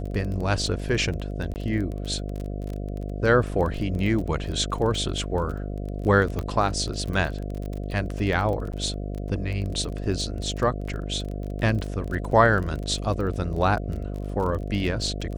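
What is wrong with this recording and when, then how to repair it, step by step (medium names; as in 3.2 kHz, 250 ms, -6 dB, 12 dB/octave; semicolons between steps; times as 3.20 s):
buzz 50 Hz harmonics 14 -31 dBFS
crackle 24 per s -30 dBFS
1.54–1.56 s: dropout 19 ms
6.39 s: pop -16 dBFS
8.72–8.73 s: dropout 9 ms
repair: de-click; de-hum 50 Hz, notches 14; interpolate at 1.54 s, 19 ms; interpolate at 8.72 s, 9 ms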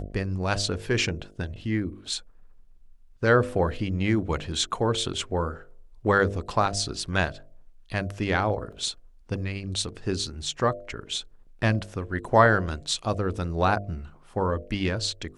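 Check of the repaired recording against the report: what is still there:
nothing left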